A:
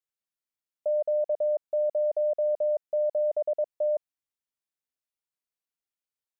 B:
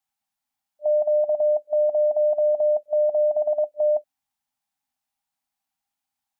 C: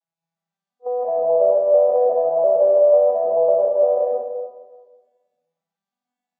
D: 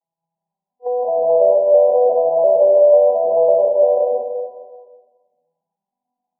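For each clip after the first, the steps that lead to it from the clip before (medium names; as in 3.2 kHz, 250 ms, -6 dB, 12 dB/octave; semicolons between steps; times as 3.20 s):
small resonant body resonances 350/800 Hz, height 16 dB, ringing for 45 ms; FFT band-reject 290–600 Hz; trim +7 dB
vocoder on a broken chord minor triad, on E3, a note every 348 ms; plate-style reverb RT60 1.4 s, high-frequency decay 0.85×, pre-delay 120 ms, DRR -3.5 dB; trim +1 dB
brick-wall FIR low-pass 1.1 kHz; tape noise reduction on one side only encoder only; trim +3 dB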